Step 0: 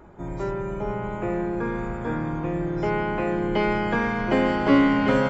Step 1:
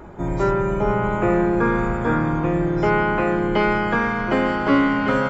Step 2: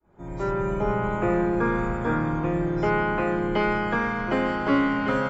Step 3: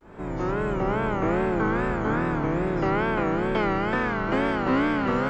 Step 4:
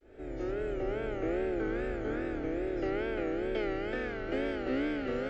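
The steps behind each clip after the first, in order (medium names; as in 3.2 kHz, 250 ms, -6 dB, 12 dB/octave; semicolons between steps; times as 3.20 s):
dynamic bell 1.3 kHz, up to +7 dB, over -43 dBFS, Q 2.8; gain riding within 5 dB 2 s; trim +3.5 dB
fade-in on the opening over 0.65 s; trim -4.5 dB
spectral levelling over time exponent 0.6; wow and flutter 140 cents; trim -3 dB
distance through air 59 m; static phaser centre 420 Hz, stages 4; trim -5.5 dB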